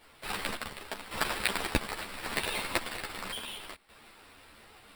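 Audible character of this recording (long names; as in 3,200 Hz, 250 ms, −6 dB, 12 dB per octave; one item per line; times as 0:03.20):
sample-and-hold tremolo 1.8 Hz, depth 75%
aliases and images of a low sample rate 6,400 Hz, jitter 0%
a shimmering, thickened sound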